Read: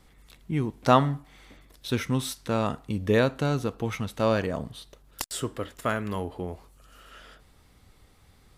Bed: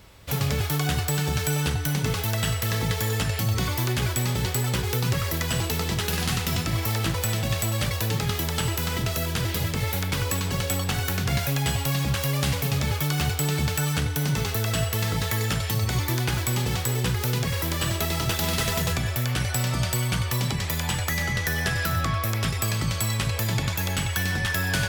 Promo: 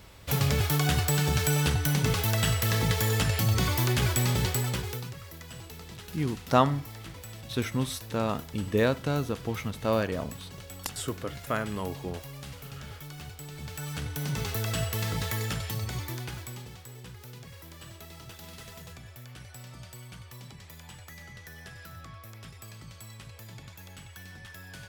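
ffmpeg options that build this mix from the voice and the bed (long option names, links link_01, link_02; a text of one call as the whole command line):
ffmpeg -i stem1.wav -i stem2.wav -filter_complex "[0:a]adelay=5650,volume=-2.5dB[link_01];[1:a]volume=12.5dB,afade=type=out:start_time=4.36:duration=0.77:silence=0.133352,afade=type=in:start_time=13.54:duration=1:silence=0.223872,afade=type=out:start_time=15.25:duration=1.5:silence=0.16788[link_02];[link_01][link_02]amix=inputs=2:normalize=0" out.wav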